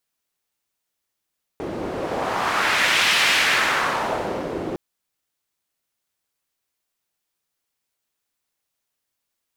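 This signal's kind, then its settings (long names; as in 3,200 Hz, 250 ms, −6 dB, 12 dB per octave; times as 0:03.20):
wind from filtered noise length 3.16 s, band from 360 Hz, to 2,600 Hz, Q 1.4, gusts 1, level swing 10.5 dB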